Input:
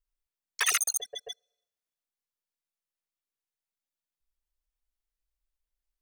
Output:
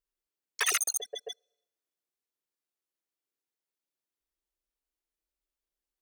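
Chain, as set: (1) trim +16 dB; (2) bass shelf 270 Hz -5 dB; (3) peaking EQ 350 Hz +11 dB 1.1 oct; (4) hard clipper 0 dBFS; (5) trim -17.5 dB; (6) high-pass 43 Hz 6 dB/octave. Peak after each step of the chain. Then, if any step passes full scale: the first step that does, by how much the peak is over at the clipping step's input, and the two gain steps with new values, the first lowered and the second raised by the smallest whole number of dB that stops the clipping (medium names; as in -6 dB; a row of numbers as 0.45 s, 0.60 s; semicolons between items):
+4.0 dBFS, +3.5 dBFS, +4.0 dBFS, 0.0 dBFS, -17.5 dBFS, -17.5 dBFS; step 1, 4.0 dB; step 1 +12 dB, step 5 -13.5 dB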